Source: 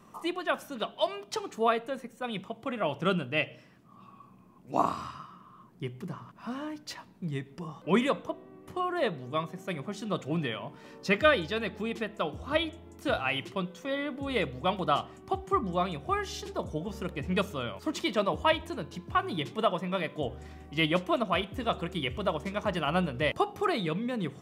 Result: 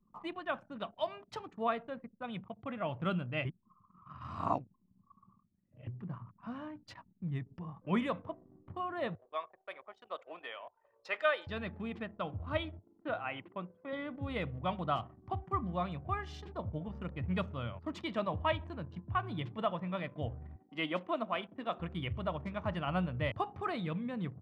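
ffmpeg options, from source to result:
-filter_complex "[0:a]asettb=1/sr,asplit=3[a][b][c];[a]atrim=end=9.154[d];[b]atrim=start=9.15:end=11.47,asetpts=PTS-STARTPTS,afade=t=in:d=0.004:c=qsin,afade=t=out:st=2.316:d=0.004:c=qsin,highpass=f=480:w=0.5412,highpass=f=480:w=1.3066[e];[c]atrim=start=11.466[f];[d][e]acrossfade=d=0.004:c1=hsin:c2=qsin[g];[g][f]acrossfade=d=0.004:c1=qsin:c2=hsin,asettb=1/sr,asplit=3[h][i][j];[h]atrim=end=12.794[k];[i]atrim=start=12.79:end=13.93,asetpts=PTS-STARTPTS,afade=t=in:d=0.004:c=qsin,afade=t=out:st=1.136:d=0.004:c=qsin,highpass=250,lowpass=2.4k[l];[j]atrim=start=13.926[m];[k][l]acrossfade=d=0.004:c1=hsin:c2=qsin[n];[n][m]acrossfade=d=0.004:c1=qsin:c2=hsin,asettb=1/sr,asplit=3[o][p][q];[o]atrim=end=20.564[r];[p]atrim=start=20.56:end=21.8,asetpts=PTS-STARTPTS,afade=t=in:d=0.004:c=qsin,afade=t=out:st=1.236:d=0.004:c=qsin,highpass=f=220:w=0.5412,highpass=f=220:w=1.3066[s];[q]atrim=start=21.796[t];[r][s]acrossfade=d=0.004:c1=hsin:c2=qsin[u];[u][t]acrossfade=d=0.004:c1=qsin:c2=hsin,asplit=3[v][w][x];[v]atrim=end=3.452[y];[w]atrim=start=3.448:end=5.872,asetpts=PTS-STARTPTS,areverse[z];[x]atrim=start=5.868[aa];[y][z]acrossfade=d=0.004:c1=hsin:c2=hsin[ab];[ab][aa]acrossfade=d=0.004:c1=hsin:c2=hsin,aemphasis=mode=reproduction:type=75kf,anlmdn=0.0158,equalizer=f=100:t=o:w=0.67:g=12,equalizer=f=400:t=o:w=0.67:g=-7,equalizer=f=6.3k:t=o:w=0.67:g=-3,volume=-5dB"

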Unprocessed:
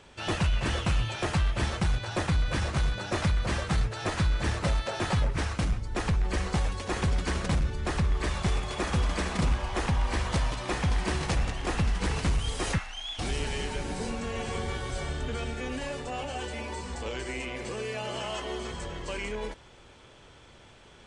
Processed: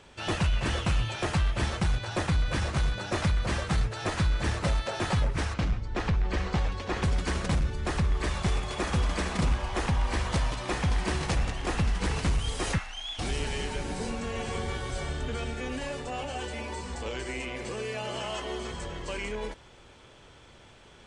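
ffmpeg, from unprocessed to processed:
-filter_complex "[0:a]asettb=1/sr,asplit=3[a][b][c];[a]atrim=end=5.544[d];[b]atrim=start=5.54:end=7.03,asetpts=PTS-STARTPTS,afade=t=in:d=0.004:c=qsin,afade=t=out:st=1.486:d=0.004:c=qsin,lowpass=4.9k[e];[c]atrim=start=7.026[f];[d][e]acrossfade=d=0.004:c1=hsin:c2=qsin[g];[g][f]acrossfade=d=0.004:c1=qsin:c2=hsin"

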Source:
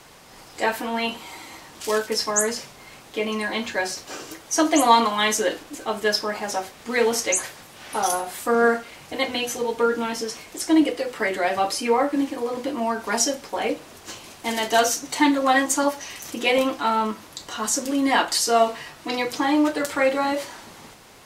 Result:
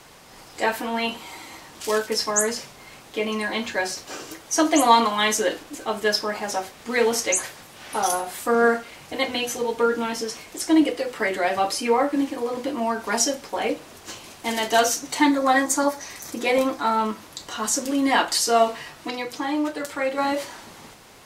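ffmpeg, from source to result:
-filter_complex "[0:a]asettb=1/sr,asplit=3[a][b][c];[a]atrim=end=15.254[d];[b]atrim=start=15.25:end=16.99,asetpts=PTS-STARTPTS,afade=t=in:d=0.004:c=qsin,afade=t=out:st=1.736:d=0.004:c=qsin,equalizer=f=2.9k:w=4.4:g=-10.5[e];[c]atrim=start=16.986[f];[d][e]acrossfade=d=0.004:c1=hsin:c2=qsin[g];[g][f]acrossfade=d=0.004:c1=qsin:c2=hsin,asplit=3[h][i][j];[h]atrim=end=19.102[k];[i]atrim=start=19.098:end=20.182,asetpts=PTS-STARTPTS,volume=-5dB[l];[j]atrim=start=20.178[m];[k][l]acrossfade=d=0.004:c1=hsin:c2=hsin[n];[n][m]acrossfade=d=0.004:c1=hsin:c2=hsin"

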